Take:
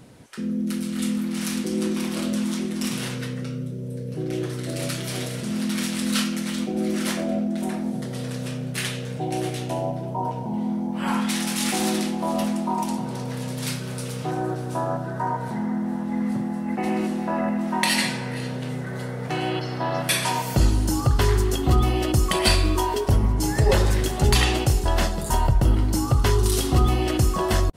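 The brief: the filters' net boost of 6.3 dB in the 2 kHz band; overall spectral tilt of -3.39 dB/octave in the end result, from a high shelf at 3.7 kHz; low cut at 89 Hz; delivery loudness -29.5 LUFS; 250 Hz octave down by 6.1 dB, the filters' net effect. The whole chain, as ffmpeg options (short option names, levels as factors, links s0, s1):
-af "highpass=89,equalizer=f=250:t=o:g=-8,equalizer=f=2000:t=o:g=5.5,highshelf=f=3700:g=8,volume=0.501"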